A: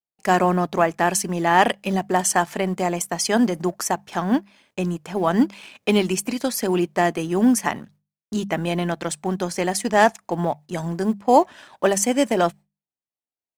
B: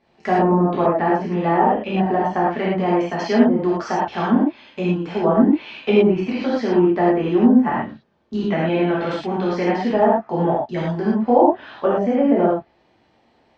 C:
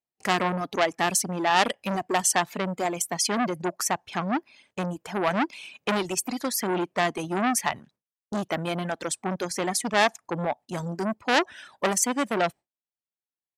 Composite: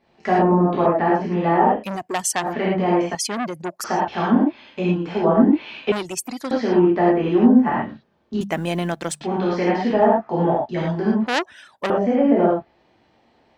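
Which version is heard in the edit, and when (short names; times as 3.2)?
B
1.79–2.47 from C, crossfade 0.16 s
3.15–3.84 from C
5.92–6.51 from C
8.41–9.21 from A
11.27–11.9 from C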